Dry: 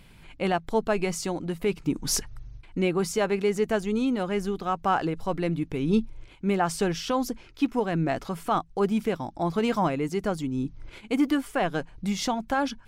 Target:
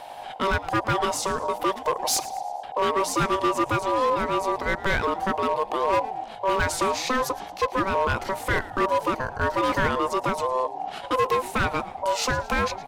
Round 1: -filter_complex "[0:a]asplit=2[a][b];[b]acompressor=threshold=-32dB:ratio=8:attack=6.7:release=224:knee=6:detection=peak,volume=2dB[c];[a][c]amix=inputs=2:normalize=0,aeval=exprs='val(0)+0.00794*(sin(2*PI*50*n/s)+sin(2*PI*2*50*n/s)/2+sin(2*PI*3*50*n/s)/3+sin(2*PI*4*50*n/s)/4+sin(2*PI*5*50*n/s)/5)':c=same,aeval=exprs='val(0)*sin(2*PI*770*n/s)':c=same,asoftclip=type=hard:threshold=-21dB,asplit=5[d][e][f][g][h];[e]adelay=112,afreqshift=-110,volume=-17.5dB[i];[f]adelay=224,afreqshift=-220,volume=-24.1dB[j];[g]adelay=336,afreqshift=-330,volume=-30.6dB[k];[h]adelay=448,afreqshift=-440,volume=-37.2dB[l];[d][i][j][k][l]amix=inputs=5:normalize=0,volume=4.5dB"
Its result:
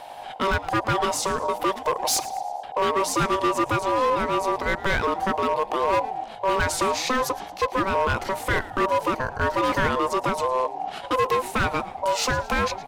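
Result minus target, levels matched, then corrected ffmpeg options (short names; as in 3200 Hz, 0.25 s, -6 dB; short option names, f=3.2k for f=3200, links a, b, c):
compressor: peak gain reduction -6 dB
-filter_complex "[0:a]asplit=2[a][b];[b]acompressor=threshold=-39dB:ratio=8:attack=6.7:release=224:knee=6:detection=peak,volume=2dB[c];[a][c]amix=inputs=2:normalize=0,aeval=exprs='val(0)+0.00794*(sin(2*PI*50*n/s)+sin(2*PI*2*50*n/s)/2+sin(2*PI*3*50*n/s)/3+sin(2*PI*4*50*n/s)/4+sin(2*PI*5*50*n/s)/5)':c=same,aeval=exprs='val(0)*sin(2*PI*770*n/s)':c=same,asoftclip=type=hard:threshold=-21dB,asplit=5[d][e][f][g][h];[e]adelay=112,afreqshift=-110,volume=-17.5dB[i];[f]adelay=224,afreqshift=-220,volume=-24.1dB[j];[g]adelay=336,afreqshift=-330,volume=-30.6dB[k];[h]adelay=448,afreqshift=-440,volume=-37.2dB[l];[d][i][j][k][l]amix=inputs=5:normalize=0,volume=4.5dB"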